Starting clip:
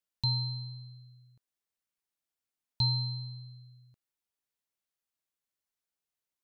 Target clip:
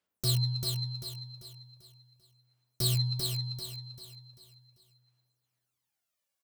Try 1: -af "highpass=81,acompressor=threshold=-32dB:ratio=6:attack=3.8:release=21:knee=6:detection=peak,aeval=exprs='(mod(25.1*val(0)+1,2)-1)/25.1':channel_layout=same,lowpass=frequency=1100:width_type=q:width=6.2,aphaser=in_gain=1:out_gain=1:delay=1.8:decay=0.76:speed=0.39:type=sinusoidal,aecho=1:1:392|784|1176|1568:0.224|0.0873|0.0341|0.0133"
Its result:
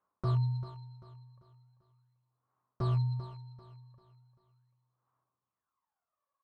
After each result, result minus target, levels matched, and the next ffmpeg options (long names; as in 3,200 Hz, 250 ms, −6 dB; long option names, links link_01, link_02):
1,000 Hz band +11.5 dB; echo-to-direct −9 dB
-af "highpass=81,acompressor=threshold=-32dB:ratio=6:attack=3.8:release=21:knee=6:detection=peak,aeval=exprs='(mod(25.1*val(0)+1,2)-1)/25.1':channel_layout=same,aphaser=in_gain=1:out_gain=1:delay=1.8:decay=0.76:speed=0.39:type=sinusoidal,aecho=1:1:392|784|1176|1568:0.224|0.0873|0.0341|0.0133"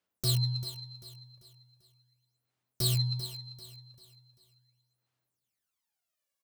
echo-to-direct −9 dB
-af "highpass=81,acompressor=threshold=-32dB:ratio=6:attack=3.8:release=21:knee=6:detection=peak,aeval=exprs='(mod(25.1*val(0)+1,2)-1)/25.1':channel_layout=same,aphaser=in_gain=1:out_gain=1:delay=1.8:decay=0.76:speed=0.39:type=sinusoidal,aecho=1:1:392|784|1176|1568|1960:0.631|0.246|0.096|0.0374|0.0146"